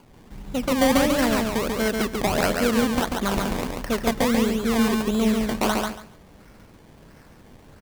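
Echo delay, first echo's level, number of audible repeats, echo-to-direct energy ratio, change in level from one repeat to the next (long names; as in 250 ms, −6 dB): 140 ms, −3.5 dB, 3, −3.5 dB, −14.0 dB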